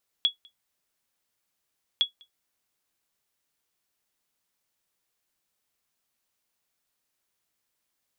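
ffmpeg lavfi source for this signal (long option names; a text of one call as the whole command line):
ffmpeg -f lavfi -i "aevalsrc='0.211*(sin(2*PI*3360*mod(t,1.76))*exp(-6.91*mod(t,1.76)/0.12)+0.0316*sin(2*PI*3360*max(mod(t,1.76)-0.2,0))*exp(-6.91*max(mod(t,1.76)-0.2,0)/0.12))':duration=3.52:sample_rate=44100" out.wav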